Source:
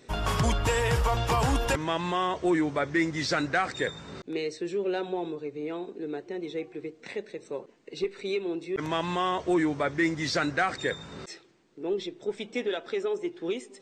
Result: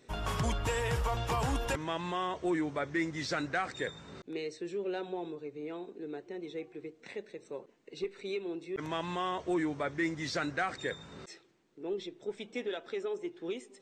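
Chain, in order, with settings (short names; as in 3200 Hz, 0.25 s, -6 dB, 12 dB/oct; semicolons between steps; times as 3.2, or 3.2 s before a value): bell 4800 Hz -2.5 dB 0.23 oct; gain -6.5 dB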